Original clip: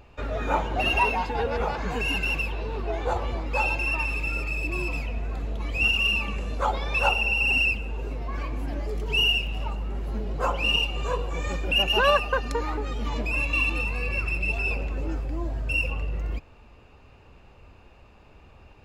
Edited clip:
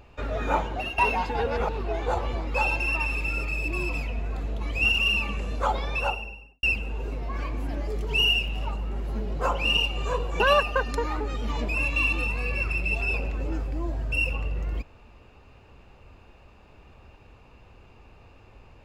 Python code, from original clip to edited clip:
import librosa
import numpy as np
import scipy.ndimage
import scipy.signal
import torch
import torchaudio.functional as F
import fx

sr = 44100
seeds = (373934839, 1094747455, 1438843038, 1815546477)

y = fx.studio_fade_out(x, sr, start_s=6.73, length_s=0.89)
y = fx.edit(y, sr, fx.fade_out_to(start_s=0.57, length_s=0.41, floor_db=-15.5),
    fx.cut(start_s=1.69, length_s=0.99),
    fx.cut(start_s=11.39, length_s=0.58), tone=tone)